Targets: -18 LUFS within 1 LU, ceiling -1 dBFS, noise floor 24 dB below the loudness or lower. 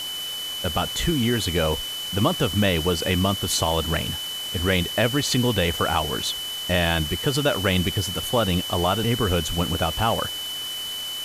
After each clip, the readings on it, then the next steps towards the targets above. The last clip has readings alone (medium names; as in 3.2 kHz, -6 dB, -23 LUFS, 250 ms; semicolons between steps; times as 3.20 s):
steady tone 3 kHz; tone level -29 dBFS; noise floor -31 dBFS; noise floor target -47 dBFS; loudness -23.0 LUFS; peak level -6.5 dBFS; loudness target -18.0 LUFS
-> band-stop 3 kHz, Q 30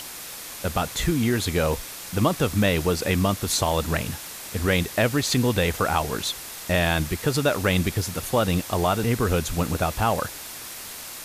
steady tone not found; noise floor -38 dBFS; noise floor target -48 dBFS
-> noise print and reduce 10 dB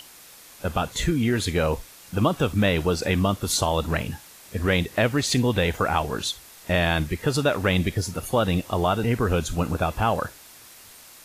noise floor -48 dBFS; loudness -24.0 LUFS; peak level -7.5 dBFS; loudness target -18.0 LUFS
-> trim +6 dB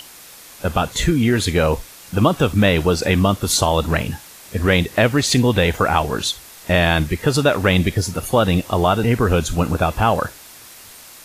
loudness -18.0 LUFS; peak level -1.5 dBFS; noise floor -42 dBFS